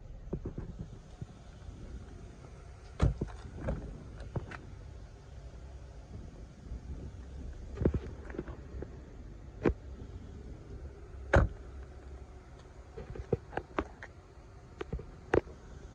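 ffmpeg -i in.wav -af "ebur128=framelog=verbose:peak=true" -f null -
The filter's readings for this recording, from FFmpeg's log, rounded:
Integrated loudness:
  I:         -39.0 LUFS
  Threshold: -50.1 LUFS
Loudness range:
  LRA:         9.6 LU
  Threshold: -60.1 LUFS
  LRA low:   -46.5 LUFS
  LRA high:  -36.9 LUFS
True peak:
  Peak:      -11.3 dBFS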